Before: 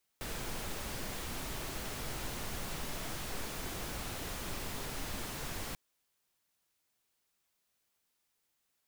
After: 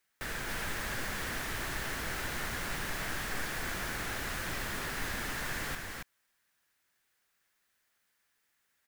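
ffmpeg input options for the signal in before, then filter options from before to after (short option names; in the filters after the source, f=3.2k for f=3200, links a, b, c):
-f lavfi -i "anoisesrc=c=pink:a=0.0543:d=5.54:r=44100:seed=1"
-filter_complex "[0:a]equalizer=f=1.7k:w=1.8:g=11,asplit=2[a][b];[b]aecho=0:1:276:0.668[c];[a][c]amix=inputs=2:normalize=0"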